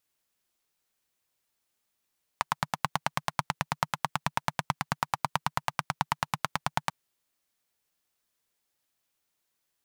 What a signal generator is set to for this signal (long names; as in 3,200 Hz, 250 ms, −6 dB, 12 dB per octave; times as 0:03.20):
pulse-train model of a single-cylinder engine, steady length 4.49 s, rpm 1,100, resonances 150/930 Hz